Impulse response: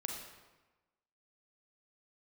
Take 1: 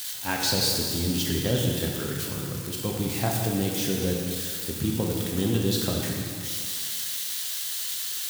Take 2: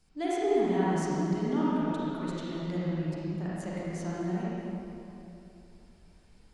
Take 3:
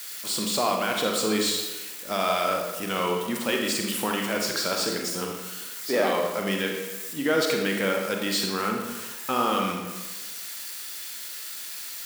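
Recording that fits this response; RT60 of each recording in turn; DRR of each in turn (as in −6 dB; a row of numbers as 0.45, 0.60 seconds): 3; 2.2, 3.0, 1.2 seconds; −1.0, −8.5, 1.0 decibels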